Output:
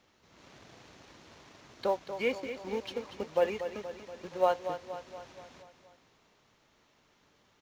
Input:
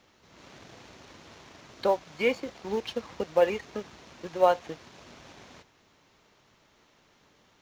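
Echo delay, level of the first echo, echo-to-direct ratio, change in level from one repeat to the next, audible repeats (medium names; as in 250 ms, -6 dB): 237 ms, -10.0 dB, -8.5 dB, -5.0 dB, 5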